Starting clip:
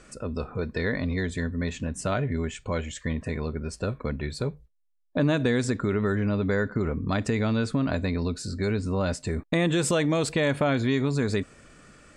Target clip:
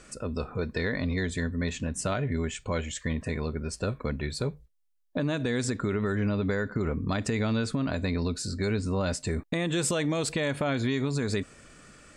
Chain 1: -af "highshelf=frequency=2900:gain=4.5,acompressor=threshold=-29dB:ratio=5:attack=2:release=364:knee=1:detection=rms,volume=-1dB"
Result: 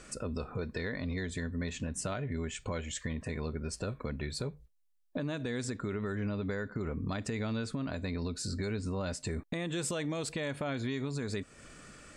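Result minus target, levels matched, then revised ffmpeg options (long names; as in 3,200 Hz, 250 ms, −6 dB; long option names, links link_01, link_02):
downward compressor: peak gain reduction +7 dB
-af "highshelf=frequency=2900:gain=4.5,acompressor=threshold=-20dB:ratio=5:attack=2:release=364:knee=1:detection=rms,volume=-1dB"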